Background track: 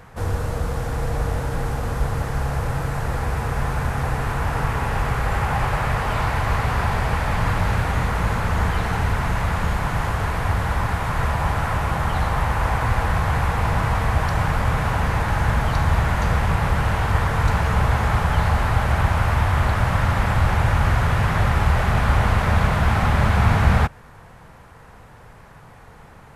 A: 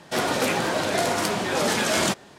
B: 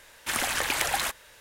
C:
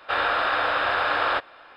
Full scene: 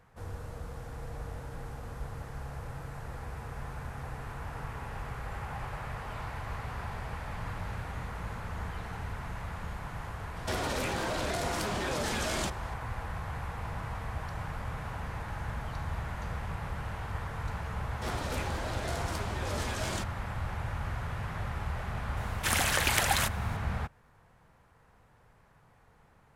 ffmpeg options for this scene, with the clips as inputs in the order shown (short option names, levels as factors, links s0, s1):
-filter_complex "[1:a]asplit=2[s0][s1];[0:a]volume=0.141[s2];[s0]acompressor=threshold=0.0316:ratio=5:attack=6.2:release=39:knee=1:detection=rms[s3];[s1]asoftclip=type=hard:threshold=0.188[s4];[s3]atrim=end=2.38,asetpts=PTS-STARTPTS,volume=0.794,afade=t=in:d=0.004:c=hsin,afade=t=out:st=2.376:d=0.004:c=hsin,adelay=10360[s5];[s4]atrim=end=2.38,asetpts=PTS-STARTPTS,volume=0.2,afade=t=in:d=0.004:c=hsin,afade=t=out:st=2.376:d=0.004:c=hsin,adelay=17900[s6];[2:a]atrim=end=1.4,asetpts=PTS-STARTPTS,volume=0.944,afade=t=in:d=0.004:c=hsin,afade=t=out:st=1.396:d=0.004:c=hsin,adelay=22170[s7];[s2][s5][s6][s7]amix=inputs=4:normalize=0"